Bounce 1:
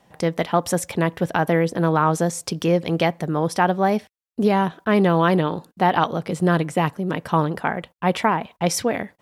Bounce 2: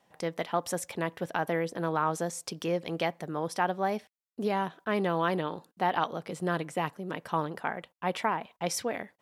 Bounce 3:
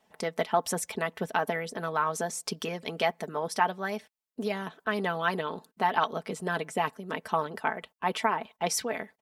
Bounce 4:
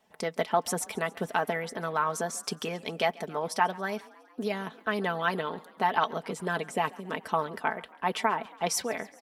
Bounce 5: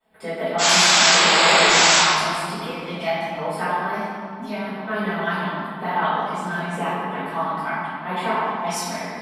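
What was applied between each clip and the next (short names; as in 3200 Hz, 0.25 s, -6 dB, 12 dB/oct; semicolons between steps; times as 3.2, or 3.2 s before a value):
low shelf 200 Hz -10.5 dB; gain -8.5 dB
harmonic-percussive split percussive +9 dB; comb 4.6 ms, depth 54%; gain -6 dB
frequency-shifting echo 0.138 s, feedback 65%, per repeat +30 Hz, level -22.5 dB
painted sound noise, 0.58–1.99, 320–8000 Hz -18 dBFS; LFO notch square 0.89 Hz 460–6000 Hz; reverb RT60 2.2 s, pre-delay 3 ms, DRR -18.5 dB; gain -17 dB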